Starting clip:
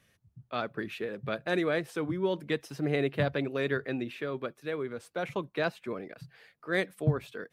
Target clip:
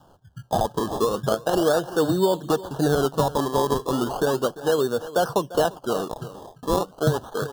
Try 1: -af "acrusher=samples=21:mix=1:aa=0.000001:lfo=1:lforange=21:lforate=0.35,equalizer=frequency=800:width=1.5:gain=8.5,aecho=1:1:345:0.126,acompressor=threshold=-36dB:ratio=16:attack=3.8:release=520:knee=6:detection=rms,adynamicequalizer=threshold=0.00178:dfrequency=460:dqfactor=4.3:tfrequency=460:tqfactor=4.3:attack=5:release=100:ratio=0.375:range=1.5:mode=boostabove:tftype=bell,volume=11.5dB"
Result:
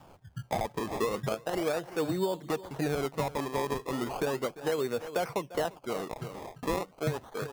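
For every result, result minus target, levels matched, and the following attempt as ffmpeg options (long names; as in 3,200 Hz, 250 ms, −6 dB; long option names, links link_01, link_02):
downward compressor: peak gain reduction +9.5 dB; 2,000 Hz band +4.0 dB
-af "acrusher=samples=21:mix=1:aa=0.000001:lfo=1:lforange=21:lforate=0.35,equalizer=frequency=800:width=1.5:gain=8.5,aecho=1:1:345:0.126,acompressor=threshold=-25dB:ratio=16:attack=3.8:release=520:knee=6:detection=rms,adynamicequalizer=threshold=0.00178:dfrequency=460:dqfactor=4.3:tfrequency=460:tqfactor=4.3:attack=5:release=100:ratio=0.375:range=1.5:mode=boostabove:tftype=bell,volume=11.5dB"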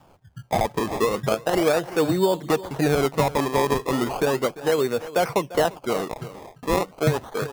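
2,000 Hz band +3.5 dB
-af "acrusher=samples=21:mix=1:aa=0.000001:lfo=1:lforange=21:lforate=0.35,asuperstop=centerf=2200:order=12:qfactor=2,equalizer=frequency=800:width=1.5:gain=8.5,aecho=1:1:345:0.126,acompressor=threshold=-25dB:ratio=16:attack=3.8:release=520:knee=6:detection=rms,adynamicequalizer=threshold=0.00178:dfrequency=460:dqfactor=4.3:tfrequency=460:tqfactor=4.3:attack=5:release=100:ratio=0.375:range=1.5:mode=boostabove:tftype=bell,volume=11.5dB"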